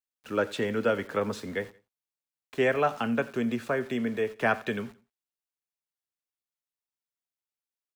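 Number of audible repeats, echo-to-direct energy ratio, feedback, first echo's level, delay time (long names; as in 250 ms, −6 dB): 2, −19.5 dB, 30%, −20.0 dB, 87 ms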